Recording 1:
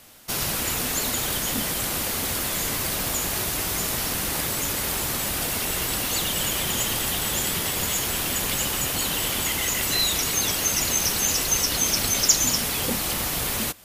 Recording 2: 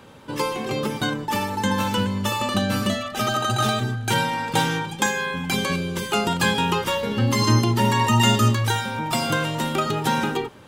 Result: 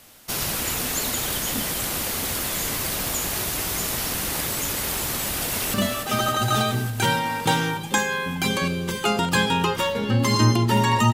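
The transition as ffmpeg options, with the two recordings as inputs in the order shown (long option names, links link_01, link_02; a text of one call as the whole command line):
ffmpeg -i cue0.wav -i cue1.wav -filter_complex "[0:a]apad=whole_dur=11.13,atrim=end=11.13,atrim=end=5.742[link_01];[1:a]atrim=start=2.818:end=8.21[link_02];[link_01][link_02]acrossfade=duration=0.004:curve1=hsin:curve2=hsin,asplit=2[link_03][link_04];[link_04]afade=type=in:start_time=5.23:duration=0.01,afade=type=out:start_time=5.74:duration=0.01,aecho=0:1:290|580|870|1160|1450|1740|2030|2320|2610|2900|3190|3480:0.421697|0.337357|0.269886|0.215909|0.172727|0.138182|0.110545|0.0884362|0.0707489|0.0565991|0.0452793|0.0362235[link_05];[link_03][link_05]amix=inputs=2:normalize=0" out.wav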